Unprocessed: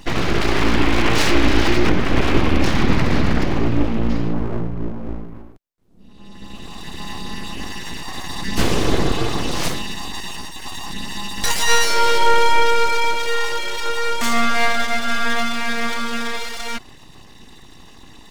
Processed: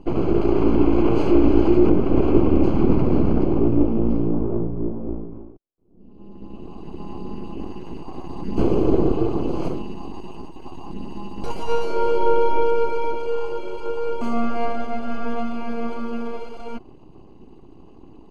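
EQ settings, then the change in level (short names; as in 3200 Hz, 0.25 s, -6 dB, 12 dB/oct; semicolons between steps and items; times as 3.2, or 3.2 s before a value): running mean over 24 samples; bell 360 Hz +8.5 dB 0.86 oct; -2.5 dB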